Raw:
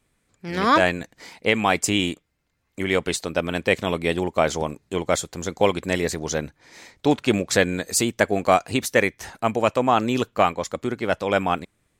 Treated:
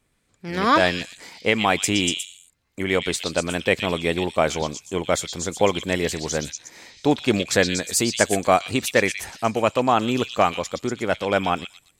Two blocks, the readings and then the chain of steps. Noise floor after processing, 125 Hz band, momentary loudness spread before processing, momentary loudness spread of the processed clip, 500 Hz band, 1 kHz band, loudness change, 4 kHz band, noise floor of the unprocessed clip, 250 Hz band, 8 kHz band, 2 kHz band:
-67 dBFS, 0.0 dB, 9 LU, 9 LU, 0.0 dB, 0.0 dB, +0.5 dB, +3.0 dB, -71 dBFS, 0.0 dB, +2.0 dB, +0.5 dB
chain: delay with a stepping band-pass 0.12 s, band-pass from 3800 Hz, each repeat 0.7 oct, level 0 dB

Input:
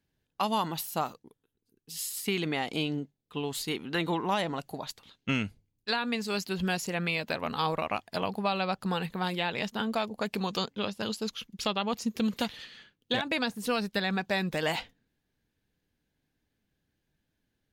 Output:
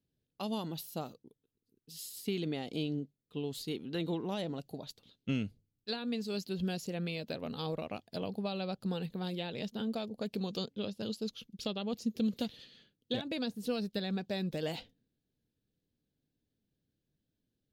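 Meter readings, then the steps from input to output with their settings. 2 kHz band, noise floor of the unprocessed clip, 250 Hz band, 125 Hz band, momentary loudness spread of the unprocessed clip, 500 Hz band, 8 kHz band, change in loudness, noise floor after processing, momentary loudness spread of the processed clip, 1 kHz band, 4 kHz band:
-14.0 dB, -81 dBFS, -3.0 dB, -3.0 dB, 7 LU, -5.0 dB, -10.5 dB, -6.5 dB, under -85 dBFS, 7 LU, -14.0 dB, -8.0 dB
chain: ten-band EQ 125 Hz +5 dB, 250 Hz +4 dB, 500 Hz +5 dB, 1000 Hz -9 dB, 2000 Hz -7 dB, 4000 Hz +4 dB, 8000 Hz -4 dB; gain -8 dB

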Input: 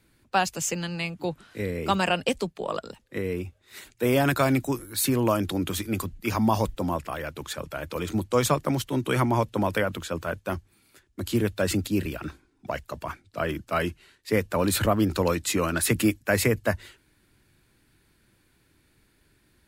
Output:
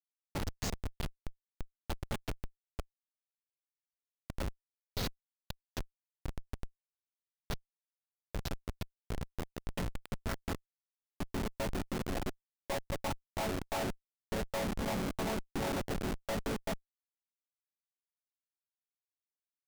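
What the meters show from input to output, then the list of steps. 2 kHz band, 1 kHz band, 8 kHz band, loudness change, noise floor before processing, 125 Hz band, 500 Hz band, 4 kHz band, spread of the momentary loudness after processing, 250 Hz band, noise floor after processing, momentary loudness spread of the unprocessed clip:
-14.5 dB, -14.0 dB, -15.5 dB, -13.0 dB, -66 dBFS, -13.0 dB, -14.5 dB, -11.5 dB, 14 LU, -14.5 dB, under -85 dBFS, 12 LU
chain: chord vocoder minor triad, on F#3; low shelf 350 Hz +7 dB; de-hum 213.8 Hz, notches 11; limiter -14 dBFS, peak gain reduction 9 dB; compressor 16:1, threshold -23 dBFS, peak gain reduction 7 dB; added harmonics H 2 -28 dB, 3 -23 dB, 5 -23 dB, 8 -25 dB, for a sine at -14 dBFS; band-pass sweep 4800 Hz -> 830 Hz, 9.14–11.98; Schmitt trigger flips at -43 dBFS; gain +13 dB

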